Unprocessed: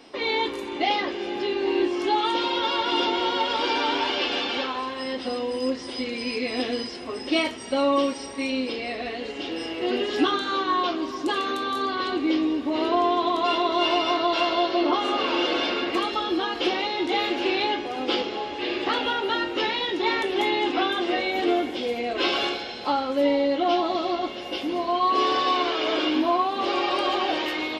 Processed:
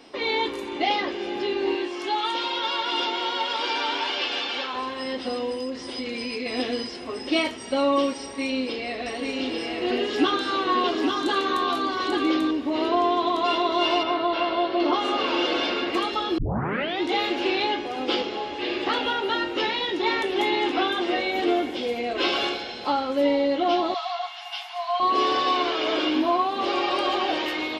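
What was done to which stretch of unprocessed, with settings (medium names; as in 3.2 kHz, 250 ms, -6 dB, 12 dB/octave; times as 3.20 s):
1.75–4.73 s: bass shelf 470 Hz -10.5 dB
5.52–6.46 s: compression, threshold -26 dBFS
8.22–12.51 s: delay 840 ms -3.5 dB
14.03–14.80 s: distance through air 230 m
16.38 s: tape start 0.64 s
19.93–20.41 s: echo throw 470 ms, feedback 35%, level -12 dB
23.94–25.00 s: Chebyshev high-pass 690 Hz, order 8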